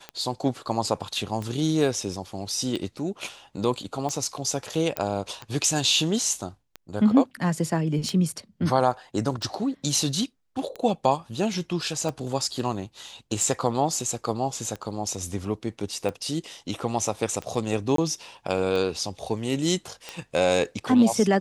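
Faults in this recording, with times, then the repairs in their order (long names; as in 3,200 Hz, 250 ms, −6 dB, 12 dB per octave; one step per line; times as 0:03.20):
scratch tick 45 rpm −19 dBFS
0:04.97: click −10 dBFS
0:17.96–0:17.98: drop-out 23 ms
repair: click removal
repair the gap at 0:17.96, 23 ms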